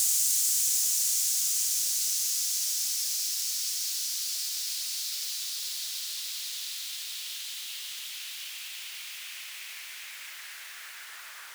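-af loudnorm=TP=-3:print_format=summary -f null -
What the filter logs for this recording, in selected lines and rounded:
Input Integrated:    -28.5 LUFS
Input True Peak:     -12.7 dBTP
Input LRA:            13.7 LU
Input Threshold:     -39.4 LUFS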